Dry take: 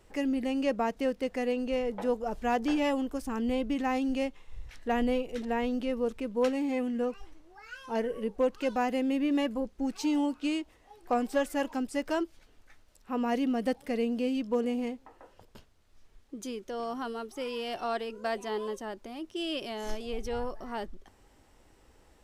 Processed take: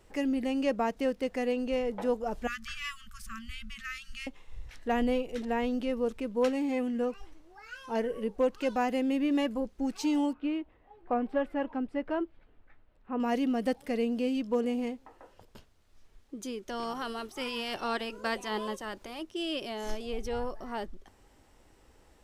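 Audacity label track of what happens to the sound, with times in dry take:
2.470000	4.270000	brick-wall FIR band-stop 210–1100 Hz
10.330000	13.200000	air absorption 500 m
16.670000	19.220000	spectral limiter ceiling under each frame's peak by 12 dB

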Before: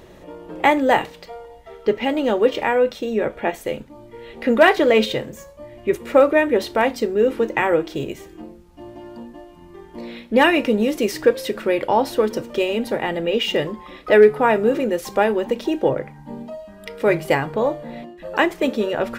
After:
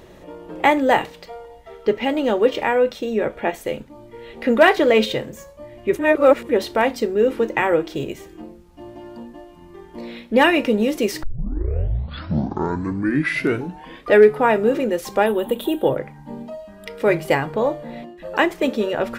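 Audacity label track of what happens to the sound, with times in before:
5.990000	6.490000	reverse
11.230000	11.230000	tape start 2.98 s
15.260000	15.970000	EQ curve 1400 Hz 0 dB, 2200 Hz -7 dB, 3500 Hz +8 dB, 5300 Hz -19 dB, 8400 Hz +7 dB, 12000 Hz +15 dB

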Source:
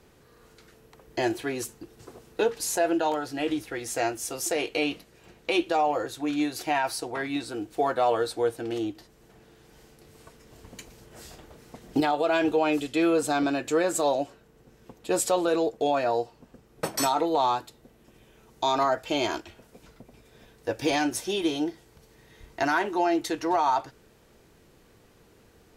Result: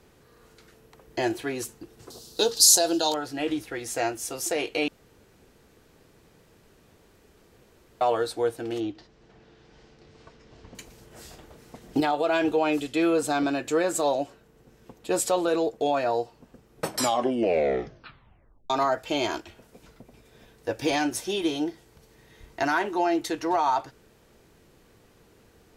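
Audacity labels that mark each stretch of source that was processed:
2.100000	3.140000	resonant high shelf 3100 Hz +12 dB, Q 3
4.880000	8.010000	room tone
8.800000	10.750000	LPF 5700 Hz 24 dB/oct
16.890000	16.890000	tape stop 1.81 s

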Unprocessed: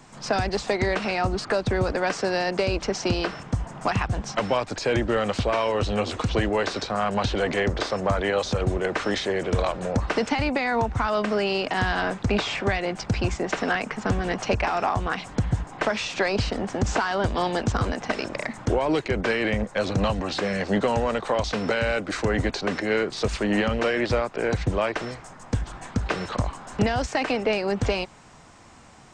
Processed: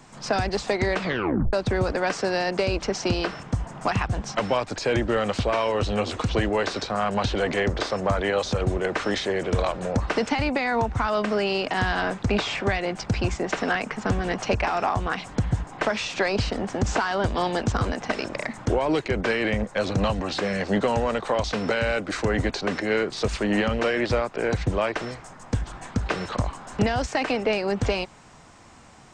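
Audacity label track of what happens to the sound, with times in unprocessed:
0.980000	0.980000	tape stop 0.55 s

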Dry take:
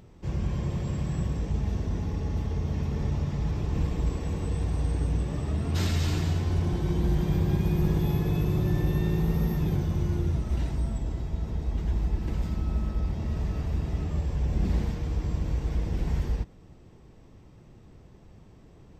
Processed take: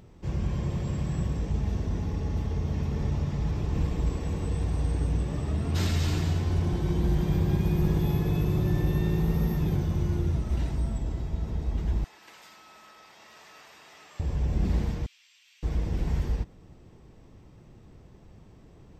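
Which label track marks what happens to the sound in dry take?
12.040000	14.200000	HPF 1200 Hz
15.060000	15.630000	ladder high-pass 2300 Hz, resonance 45%

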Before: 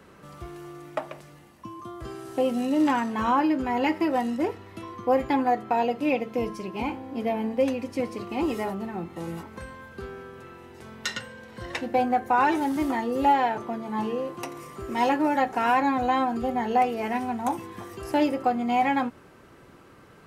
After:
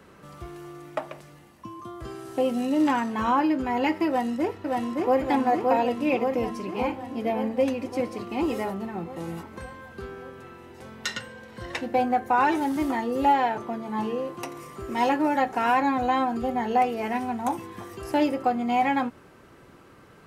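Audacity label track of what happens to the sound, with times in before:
4.070000	5.200000	echo throw 0.57 s, feedback 70%, level -2 dB

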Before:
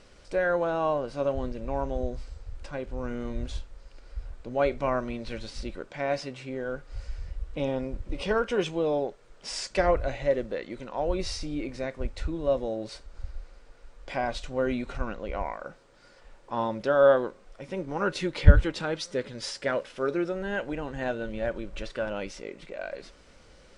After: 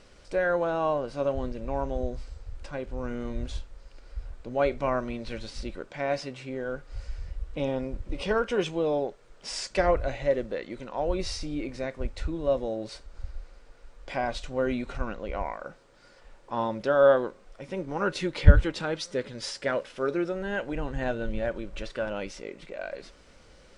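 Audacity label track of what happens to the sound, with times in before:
20.750000	21.410000	low shelf 95 Hz +10.5 dB

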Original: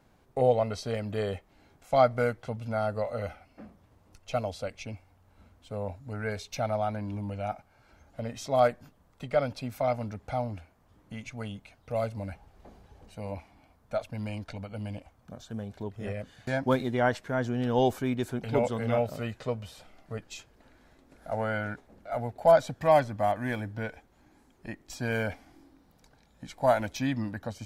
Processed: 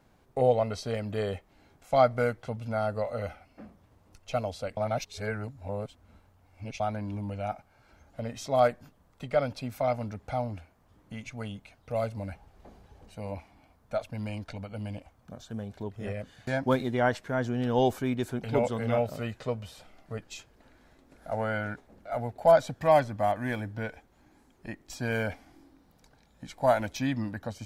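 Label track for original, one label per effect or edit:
4.770000	6.800000	reverse

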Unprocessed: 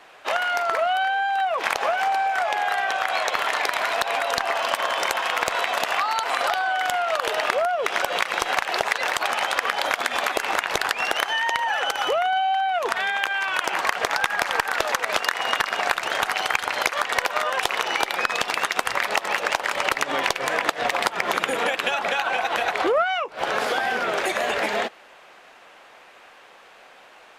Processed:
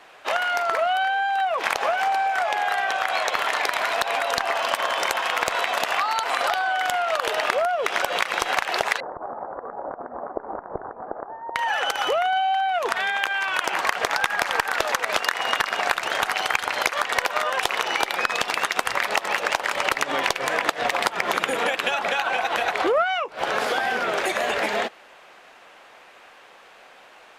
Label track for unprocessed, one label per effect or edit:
9.000000	11.560000	Gaussian blur sigma 10 samples

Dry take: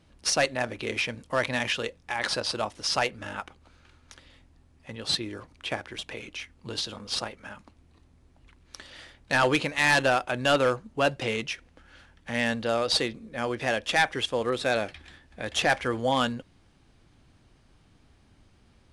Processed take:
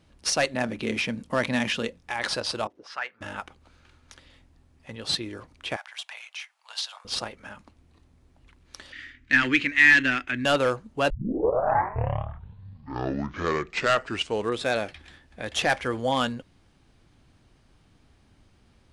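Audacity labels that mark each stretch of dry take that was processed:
0.540000	1.990000	bell 210 Hz +11 dB 0.79 oct
2.670000	3.210000	auto-wah 310–1600 Hz, Q 2.3, up, full sweep at -24.5 dBFS
5.760000	7.050000	steep high-pass 700 Hz 48 dB/oct
8.920000	10.450000	EQ curve 120 Hz 0 dB, 170 Hz -13 dB, 260 Hz +7 dB, 510 Hz -15 dB, 820 Hz -17 dB, 1900 Hz +10 dB, 4300 Hz -5 dB, 6900 Hz -5 dB, 11000 Hz -17 dB
11.100000	11.100000	tape start 3.60 s

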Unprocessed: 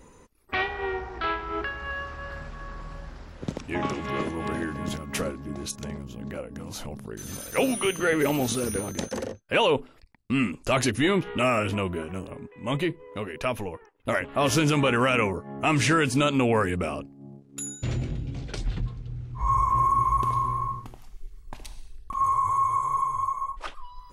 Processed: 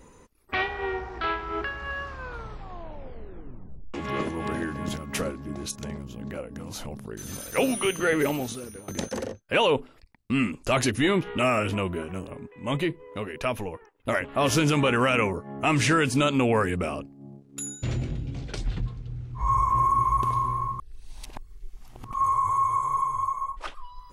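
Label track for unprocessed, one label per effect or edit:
2.070000	2.070000	tape stop 1.87 s
8.210000	8.880000	fade out quadratic, to -14.5 dB
20.790000	22.110000	reverse

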